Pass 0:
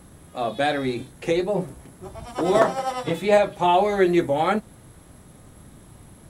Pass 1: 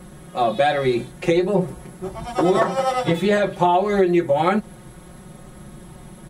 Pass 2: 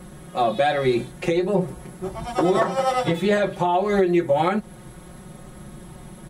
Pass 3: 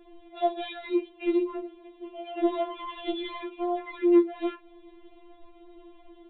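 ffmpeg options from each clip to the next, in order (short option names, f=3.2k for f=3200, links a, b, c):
-af "highshelf=f=5k:g=-5,aecho=1:1:5.5:0.94,acompressor=threshold=-18dB:ratio=10,volume=4.5dB"
-af "alimiter=limit=-9.5dB:level=0:latency=1:release=335"
-filter_complex "[0:a]asplit=2[a][b];[b]aeval=exprs='0.0944*(abs(mod(val(0)/0.0944+3,4)-2)-1)':c=same,volume=-9dB[c];[a][c]amix=inputs=2:normalize=0,aresample=8000,aresample=44100,afftfilt=real='re*4*eq(mod(b,16),0)':imag='im*4*eq(mod(b,16),0)':win_size=2048:overlap=0.75,volume=-8.5dB"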